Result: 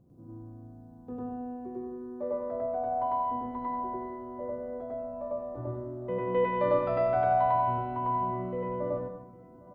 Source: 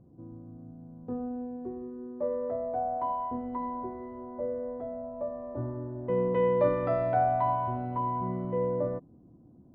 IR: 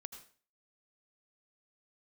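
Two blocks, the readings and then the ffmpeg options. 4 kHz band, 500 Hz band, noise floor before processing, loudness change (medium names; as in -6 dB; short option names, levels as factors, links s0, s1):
no reading, -0.5 dB, -56 dBFS, 0.0 dB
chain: -filter_complex "[0:a]highshelf=f=2300:g=8,asplit=2[s0][s1];[s1]adelay=806,lowpass=f=2100:p=1,volume=0.0794,asplit=2[s2][s3];[s3]adelay=806,lowpass=f=2100:p=1,volume=0.52,asplit=2[s4][s5];[s5]adelay=806,lowpass=f=2100:p=1,volume=0.52,asplit=2[s6][s7];[s7]adelay=806,lowpass=f=2100:p=1,volume=0.52[s8];[s0][s2][s4][s6][s8]amix=inputs=5:normalize=0,asplit=2[s9][s10];[1:a]atrim=start_sample=2205,adelay=100[s11];[s10][s11]afir=irnorm=-1:irlink=0,volume=2.37[s12];[s9][s12]amix=inputs=2:normalize=0,volume=0.562"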